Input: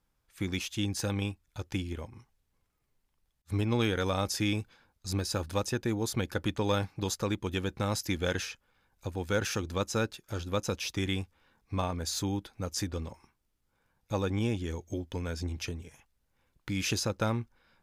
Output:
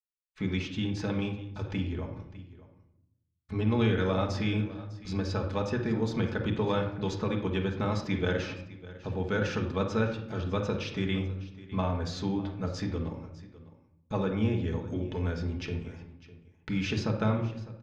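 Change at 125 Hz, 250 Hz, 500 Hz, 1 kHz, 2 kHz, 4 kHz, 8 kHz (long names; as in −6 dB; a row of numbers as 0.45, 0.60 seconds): +3.0, +3.0, +2.0, +1.0, +0.5, −4.0, −13.5 decibels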